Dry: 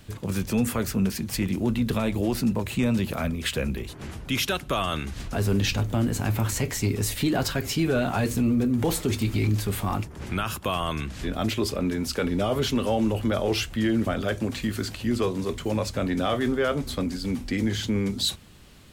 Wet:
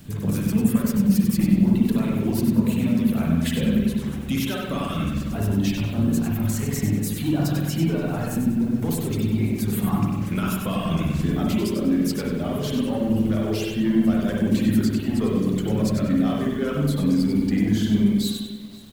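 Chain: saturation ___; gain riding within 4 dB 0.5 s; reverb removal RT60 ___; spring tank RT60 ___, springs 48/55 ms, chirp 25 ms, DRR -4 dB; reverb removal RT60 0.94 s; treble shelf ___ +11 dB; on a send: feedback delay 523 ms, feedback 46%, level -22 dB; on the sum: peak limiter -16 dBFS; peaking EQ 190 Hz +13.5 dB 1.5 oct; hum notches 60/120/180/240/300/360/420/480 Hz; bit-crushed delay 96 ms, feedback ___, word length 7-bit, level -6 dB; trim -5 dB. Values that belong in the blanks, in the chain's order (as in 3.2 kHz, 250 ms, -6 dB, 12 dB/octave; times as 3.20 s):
-20.5 dBFS, 1.2 s, 1.8 s, 7.9 kHz, 35%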